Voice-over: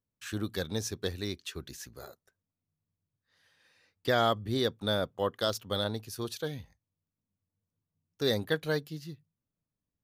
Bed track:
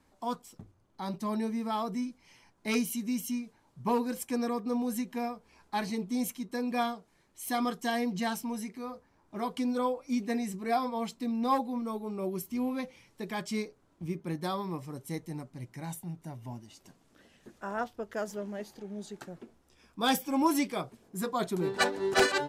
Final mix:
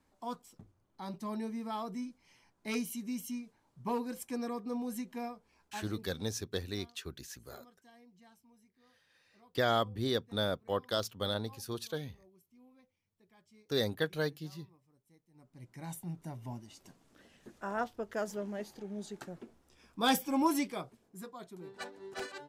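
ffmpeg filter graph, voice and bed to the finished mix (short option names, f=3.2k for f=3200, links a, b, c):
-filter_complex "[0:a]adelay=5500,volume=-3dB[a];[1:a]volume=22.5dB,afade=t=out:st=5.28:d=0.95:silence=0.0668344,afade=t=in:st=15.33:d=0.78:silence=0.0375837,afade=t=out:st=20.23:d=1.14:silence=0.158489[b];[a][b]amix=inputs=2:normalize=0"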